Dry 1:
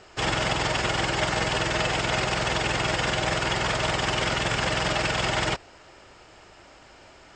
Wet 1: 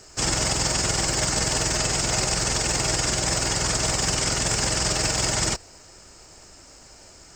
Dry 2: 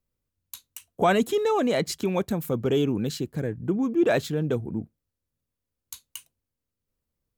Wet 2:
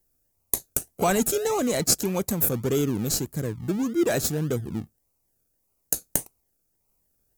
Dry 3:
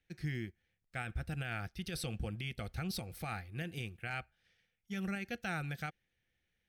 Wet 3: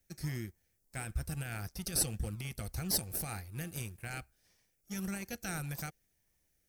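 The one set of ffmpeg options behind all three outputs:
-filter_complex "[0:a]lowshelf=f=75:g=8.5,aexciter=amount=8.4:drive=3.5:freq=4800,asplit=2[s0][s1];[s1]acrusher=samples=35:mix=1:aa=0.000001:lfo=1:lforange=21:lforate=1.7,volume=0.316[s2];[s0][s2]amix=inputs=2:normalize=0,volume=0.668"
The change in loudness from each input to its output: +2.5 LU, 0.0 LU, +3.0 LU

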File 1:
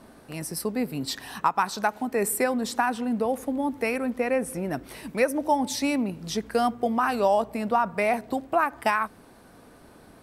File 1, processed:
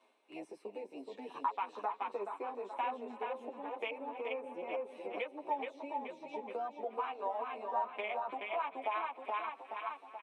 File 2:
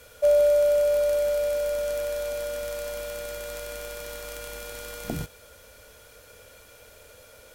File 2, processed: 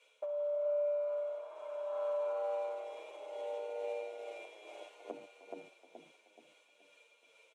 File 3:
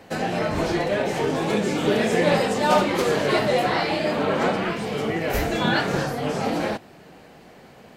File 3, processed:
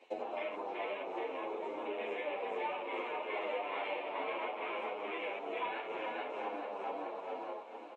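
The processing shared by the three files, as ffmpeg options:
-filter_complex "[0:a]acrossover=split=2600[s0][s1];[s1]acompressor=threshold=0.00794:ratio=4:attack=1:release=60[s2];[s0][s2]amix=inputs=2:normalize=0,tremolo=f=2.3:d=0.42,afwtdn=0.0282,superequalizer=12b=3.55:13b=2.24,asplit=2[s3][s4];[s4]aecho=0:1:426|852|1278|1704|2130:0.631|0.233|0.0864|0.032|0.0118[s5];[s3][s5]amix=inputs=2:normalize=0,acompressor=threshold=0.02:ratio=8,highpass=f=360:w=0.5412,highpass=f=360:w=1.3066,equalizer=f=980:t=q:w=4:g=7,equalizer=f=1500:t=q:w=4:g=-5,equalizer=f=4700:t=q:w=4:g=-4,lowpass=f=8600:w=0.5412,lowpass=f=8600:w=1.3066,asplit=2[s6][s7];[s7]asplit=3[s8][s9][s10];[s8]adelay=308,afreqshift=33,volume=0.133[s11];[s9]adelay=616,afreqshift=66,volume=0.0442[s12];[s10]adelay=924,afreqshift=99,volume=0.0145[s13];[s11][s12][s13]amix=inputs=3:normalize=0[s14];[s6][s14]amix=inputs=2:normalize=0,asplit=2[s15][s16];[s16]adelay=8.9,afreqshift=-0.66[s17];[s15][s17]amix=inputs=2:normalize=1,volume=1.19"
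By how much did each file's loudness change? -13.5 LU, -12.0 LU, -16.5 LU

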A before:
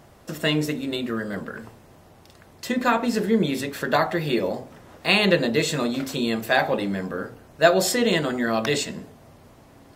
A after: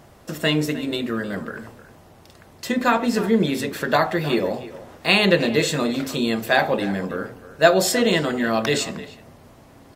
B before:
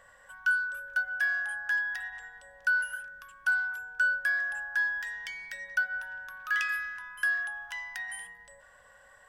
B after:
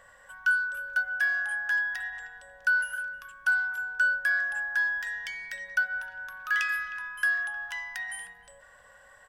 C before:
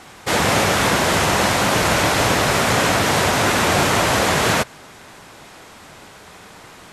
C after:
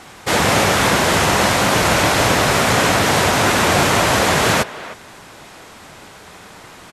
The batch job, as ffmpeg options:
-filter_complex "[0:a]asplit=2[s0][s1];[s1]adelay=310,highpass=300,lowpass=3400,asoftclip=type=hard:threshold=0.251,volume=0.178[s2];[s0][s2]amix=inputs=2:normalize=0,volume=1.26"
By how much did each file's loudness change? +2.0 LU, +2.0 LU, +2.0 LU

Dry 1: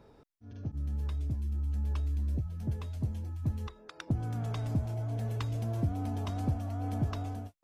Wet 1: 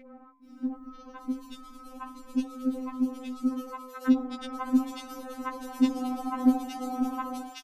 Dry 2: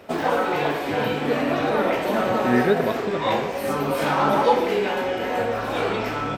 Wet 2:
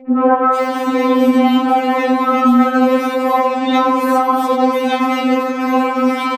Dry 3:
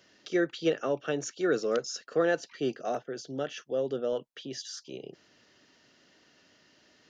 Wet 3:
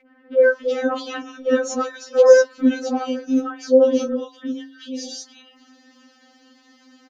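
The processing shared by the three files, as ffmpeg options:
-filter_complex "[0:a]equalizer=f=250:t=o:w=1:g=6,equalizer=f=500:t=o:w=1:g=4,equalizer=f=1000:t=o:w=1:g=8,acrossover=split=590|2100[s0][s1][s2];[s1]adelay=70[s3];[s2]adelay=440[s4];[s0][s3][s4]amix=inputs=3:normalize=0,aeval=exprs='val(0)+0.00355*sin(2*PI*2200*n/s)':c=same,bandreject=f=54.06:t=h:w=4,bandreject=f=108.12:t=h:w=4,bandreject=f=162.18:t=h:w=4,bandreject=f=216.24:t=h:w=4,bandreject=f=270.3:t=h:w=4,bandreject=f=324.36:t=h:w=4,bandreject=f=378.42:t=h:w=4,bandreject=f=432.48:t=h:w=4,bandreject=f=486.54:t=h:w=4,bandreject=f=540.6:t=h:w=4,bandreject=f=594.66:t=h:w=4,bandreject=f=648.72:t=h:w=4,bandreject=f=702.78:t=h:w=4,bandreject=f=756.84:t=h:w=4,bandreject=f=810.9:t=h:w=4,bandreject=f=864.96:t=h:w=4,bandreject=f=919.02:t=h:w=4,bandreject=f=973.08:t=h:w=4,bandreject=f=1027.14:t=h:w=4,alimiter=level_in=3.76:limit=0.891:release=50:level=0:latency=1,afftfilt=real='re*3.46*eq(mod(b,12),0)':imag='im*3.46*eq(mod(b,12),0)':win_size=2048:overlap=0.75,volume=0.75"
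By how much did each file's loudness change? +4.0 LU, +8.0 LU, +13.0 LU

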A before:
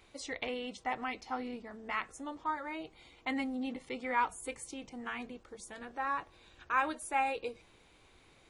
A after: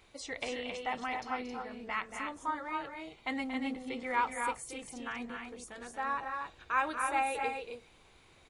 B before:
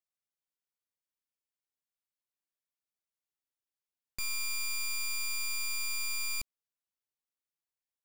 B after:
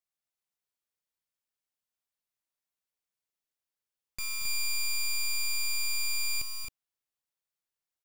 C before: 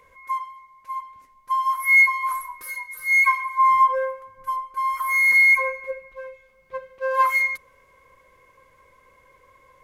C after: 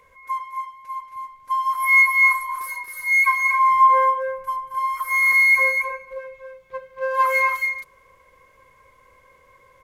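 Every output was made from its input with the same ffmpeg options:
-af "equalizer=f=300:t=o:w=0.77:g=-2.5,aecho=1:1:230.3|268.2:0.355|0.562"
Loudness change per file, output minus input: +1.0 LU, +2.5 LU, +1.5 LU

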